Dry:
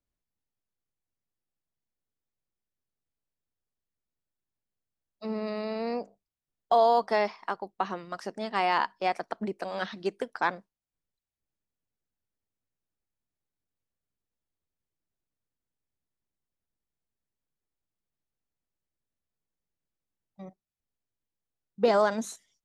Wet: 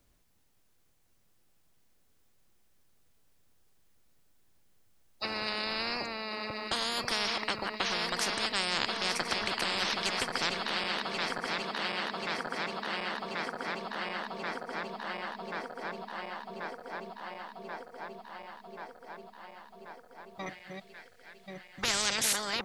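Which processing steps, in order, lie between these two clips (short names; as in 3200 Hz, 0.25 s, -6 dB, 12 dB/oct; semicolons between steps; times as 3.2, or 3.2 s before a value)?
regenerating reverse delay 0.542 s, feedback 81%, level -12 dB; 20.46–22.33 ten-band EQ 125 Hz +4 dB, 250 Hz -4 dB, 1000 Hz -10 dB, 2000 Hz +11 dB, 4000 Hz +6 dB, 8000 Hz +4 dB; spectral compressor 10:1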